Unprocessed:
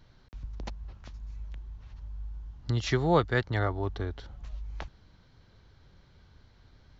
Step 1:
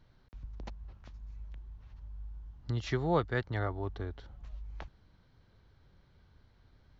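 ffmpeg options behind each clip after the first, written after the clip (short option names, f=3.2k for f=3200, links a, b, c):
-af "highshelf=f=4.1k:g=-7,volume=-5dB"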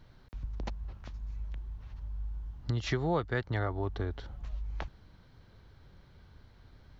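-af "acompressor=threshold=-36dB:ratio=2.5,volume=6.5dB"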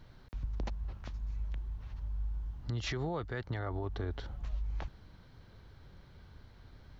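-af "alimiter=level_in=5dB:limit=-24dB:level=0:latency=1:release=45,volume=-5dB,volume=1.5dB"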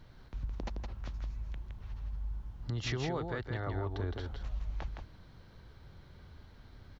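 -af "aecho=1:1:165:0.562"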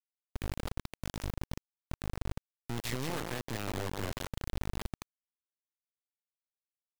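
-af "acrusher=bits=3:dc=4:mix=0:aa=0.000001,volume=1dB"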